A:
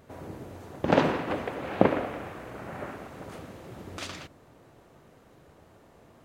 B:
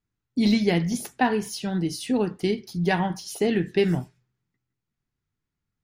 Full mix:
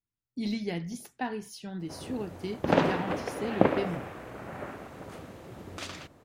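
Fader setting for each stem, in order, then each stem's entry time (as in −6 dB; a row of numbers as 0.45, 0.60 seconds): −1.5, −11.5 decibels; 1.80, 0.00 seconds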